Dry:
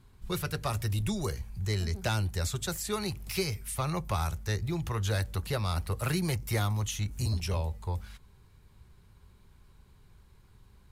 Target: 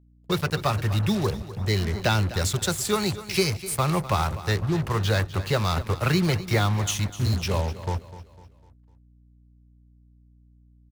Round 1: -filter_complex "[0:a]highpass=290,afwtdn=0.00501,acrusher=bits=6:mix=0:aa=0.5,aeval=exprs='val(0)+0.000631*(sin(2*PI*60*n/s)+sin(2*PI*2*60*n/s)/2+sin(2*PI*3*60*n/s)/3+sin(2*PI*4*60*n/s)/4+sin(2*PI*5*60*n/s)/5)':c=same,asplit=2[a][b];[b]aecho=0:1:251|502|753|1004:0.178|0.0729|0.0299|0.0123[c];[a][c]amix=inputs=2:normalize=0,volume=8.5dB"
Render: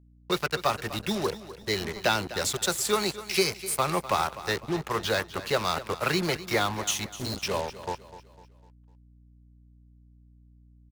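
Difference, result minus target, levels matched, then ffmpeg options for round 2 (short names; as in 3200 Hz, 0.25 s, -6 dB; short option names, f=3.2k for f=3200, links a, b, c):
125 Hz band -10.5 dB
-filter_complex "[0:a]highpass=99,afwtdn=0.00501,acrusher=bits=6:mix=0:aa=0.5,aeval=exprs='val(0)+0.000631*(sin(2*PI*60*n/s)+sin(2*PI*2*60*n/s)/2+sin(2*PI*3*60*n/s)/3+sin(2*PI*4*60*n/s)/4+sin(2*PI*5*60*n/s)/5)':c=same,asplit=2[a][b];[b]aecho=0:1:251|502|753|1004:0.178|0.0729|0.0299|0.0123[c];[a][c]amix=inputs=2:normalize=0,volume=8.5dB"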